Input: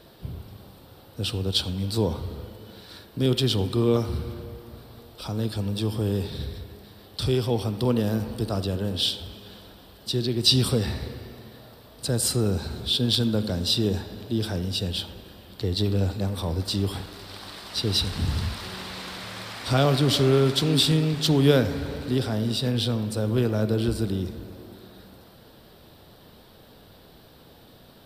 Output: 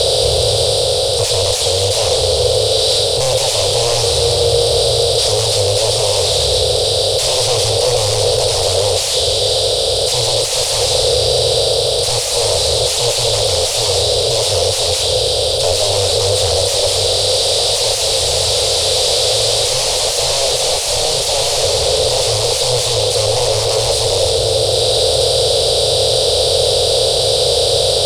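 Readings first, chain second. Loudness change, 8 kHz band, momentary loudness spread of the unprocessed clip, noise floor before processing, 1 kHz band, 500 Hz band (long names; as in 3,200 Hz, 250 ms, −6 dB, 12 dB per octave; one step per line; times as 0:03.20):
+12.0 dB, +21.5 dB, 19 LU, −51 dBFS, +15.5 dB, +15.5 dB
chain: compressor on every frequency bin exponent 0.4
flanger 0.79 Hz, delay 1.2 ms, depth 7.1 ms, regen −74%
high-shelf EQ 5,200 Hz +11.5 dB
sine wavefolder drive 20 dB, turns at −1.5 dBFS
automatic gain control
drawn EQ curve 120 Hz 0 dB, 210 Hz −29 dB, 350 Hz −12 dB, 500 Hz +11 dB, 1,100 Hz −8 dB, 1,600 Hz −13 dB, 2,600 Hz −3 dB, 4,300 Hz +3 dB, 10,000 Hz −2 dB, 15,000 Hz −25 dB
level −9 dB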